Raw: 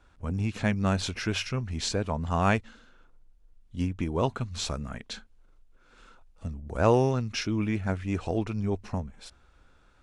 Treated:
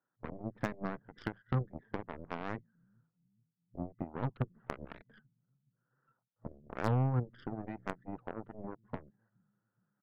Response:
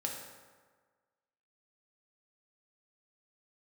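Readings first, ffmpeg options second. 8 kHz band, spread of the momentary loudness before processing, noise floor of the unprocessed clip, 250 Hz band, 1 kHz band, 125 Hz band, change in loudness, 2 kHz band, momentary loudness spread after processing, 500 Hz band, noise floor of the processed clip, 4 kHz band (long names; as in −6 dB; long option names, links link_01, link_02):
below −25 dB, 14 LU, −60 dBFS, −11.0 dB, −10.0 dB, −7.5 dB, −10.5 dB, −12.0 dB, 15 LU, −13.0 dB, below −85 dBFS, −23.0 dB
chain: -filter_complex "[0:a]afftdn=noise_reduction=14:noise_floor=-39,afftfilt=real='re*between(b*sr/4096,110,2000)':imag='im*between(b*sr/4096,110,2000)':win_size=4096:overlap=0.75,acrossover=split=140[link_01][link_02];[link_01]aecho=1:1:422|844|1266|1688:0.112|0.0561|0.0281|0.014[link_03];[link_02]acompressor=threshold=-41dB:ratio=8[link_04];[link_03][link_04]amix=inputs=2:normalize=0,aeval=exprs='0.0473*(cos(1*acos(clip(val(0)/0.0473,-1,1)))-cos(1*PI/2))+0.015*(cos(3*acos(clip(val(0)/0.0473,-1,1)))-cos(3*PI/2))+0.00133*(cos(5*acos(clip(val(0)/0.0473,-1,1)))-cos(5*PI/2))+0.0015*(cos(6*acos(clip(val(0)/0.0473,-1,1)))-cos(6*PI/2))+0.00237*(cos(7*acos(clip(val(0)/0.0473,-1,1)))-cos(7*PI/2))':channel_layout=same,volume=7dB"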